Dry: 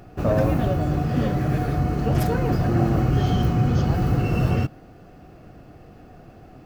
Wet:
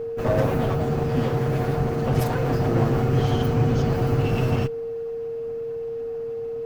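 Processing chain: minimum comb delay 7.9 ms; whine 460 Hz -27 dBFS

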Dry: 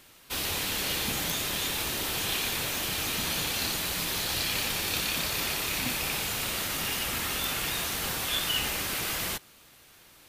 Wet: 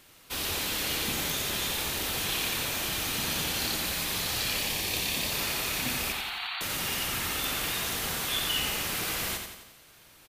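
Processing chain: 4.56–5.32 bell 1400 Hz -13 dB 0.26 oct; 6.12–6.61 brick-wall FIR band-pass 680–4600 Hz; feedback echo 87 ms, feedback 53%, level -6 dB; gain -1.5 dB

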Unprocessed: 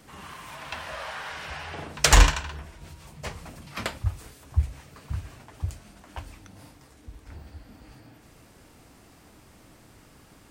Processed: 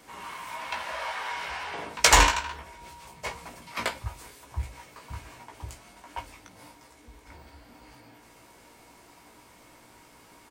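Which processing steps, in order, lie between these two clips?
tone controls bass -10 dB, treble 0 dB; doubler 17 ms -5 dB; small resonant body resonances 960/2200 Hz, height 12 dB, ringing for 70 ms

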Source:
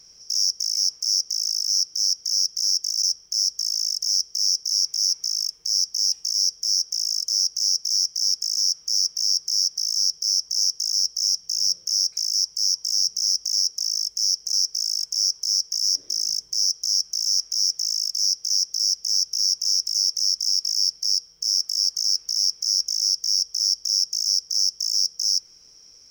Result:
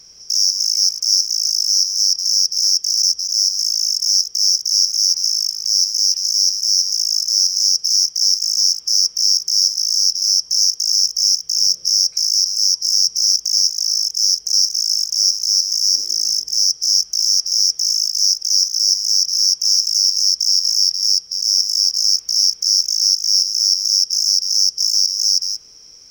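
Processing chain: reverse delay 0.166 s, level -7 dB; gain +6 dB

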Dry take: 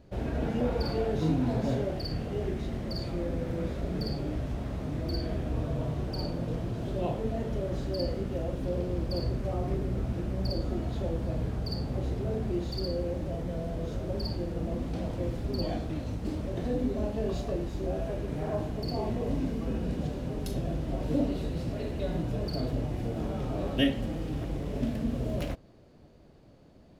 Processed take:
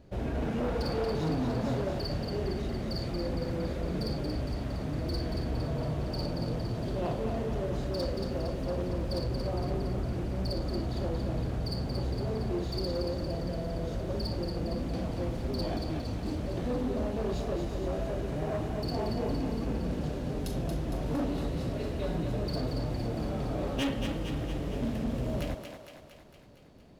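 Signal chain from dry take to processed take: hard clip -27 dBFS, distortion -13 dB; on a send: thinning echo 0.23 s, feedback 63%, high-pass 420 Hz, level -5.5 dB

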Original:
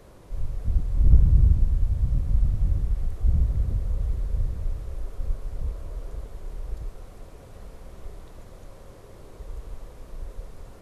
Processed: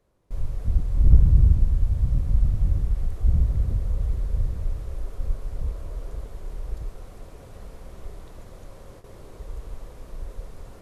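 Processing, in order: gate with hold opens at -37 dBFS; gain +1.5 dB

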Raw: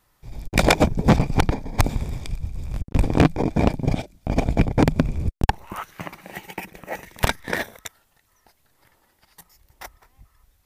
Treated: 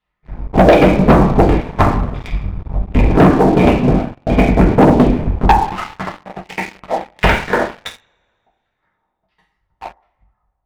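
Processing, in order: LFO low-pass saw down 1.4 Hz 590–3200 Hz; transient shaper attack +4 dB, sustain -3 dB; reverb, pre-delay 3 ms, DRR -4.5 dB; dynamic EQ 360 Hz, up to +7 dB, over -24 dBFS, Q 0.87; sample leveller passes 3; gain -11.5 dB

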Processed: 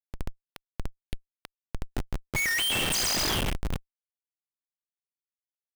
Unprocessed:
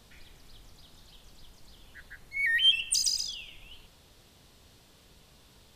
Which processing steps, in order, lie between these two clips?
per-bin compression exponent 0.6; Schmitt trigger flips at -31.5 dBFS; gain +6 dB

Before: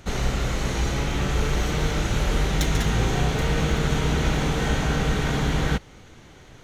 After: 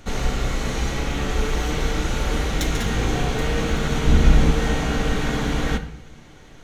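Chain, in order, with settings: 4.07–4.51 low shelf 170 Hz +11.5 dB; on a send: reverb RT60 0.75 s, pre-delay 3 ms, DRR 7 dB

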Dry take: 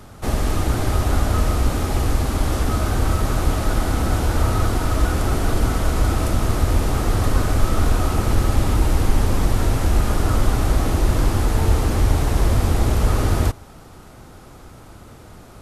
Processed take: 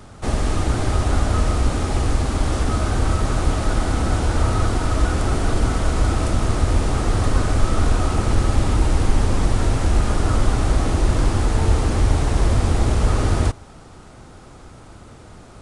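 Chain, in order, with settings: downsampling 22050 Hz

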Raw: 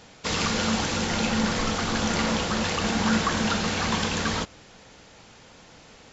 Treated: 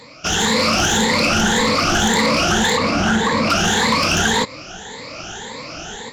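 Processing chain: moving spectral ripple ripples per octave 0.98, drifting +1.8 Hz, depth 18 dB; AGC gain up to 10.5 dB; low shelf 180 Hz -5.5 dB; compressor 2:1, threshold -18 dBFS, peak gain reduction 5 dB; 2.77–3.5 high shelf 2500 Hz -8 dB; soft clip -16 dBFS, distortion -14 dB; gain +5.5 dB

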